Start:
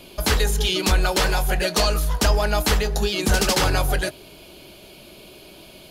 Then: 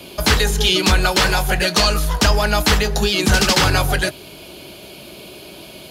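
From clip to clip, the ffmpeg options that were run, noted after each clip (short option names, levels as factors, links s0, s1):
-filter_complex "[0:a]highpass=63,acrossover=split=6800[s0][s1];[s1]acompressor=threshold=0.02:ratio=4:attack=1:release=60[s2];[s0][s2]amix=inputs=2:normalize=0,acrossover=split=290|880|2200[s3][s4][s5][s6];[s4]alimiter=level_in=1.19:limit=0.0631:level=0:latency=1:release=413,volume=0.841[s7];[s3][s7][s5][s6]amix=inputs=4:normalize=0,volume=2.24"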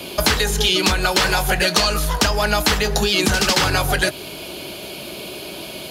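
-af "acompressor=threshold=0.112:ratio=6,lowshelf=f=180:g=-5,volume=2"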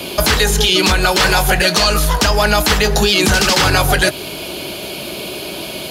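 -af "alimiter=limit=0.355:level=0:latency=1:release=12,volume=2"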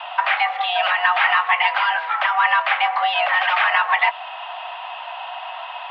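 -af "highpass=f=350:t=q:w=0.5412,highpass=f=350:t=q:w=1.307,lowpass=f=2500:t=q:w=0.5176,lowpass=f=2500:t=q:w=0.7071,lowpass=f=2500:t=q:w=1.932,afreqshift=350,volume=0.841"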